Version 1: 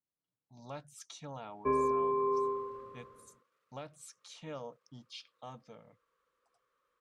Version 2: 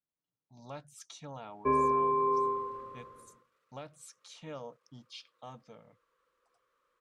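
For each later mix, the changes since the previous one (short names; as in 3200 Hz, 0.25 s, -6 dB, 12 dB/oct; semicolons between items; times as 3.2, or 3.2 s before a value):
reverb: on, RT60 0.35 s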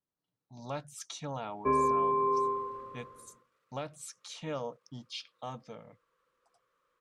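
speech +6.5 dB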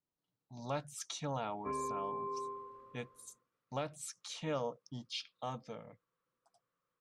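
background -12.0 dB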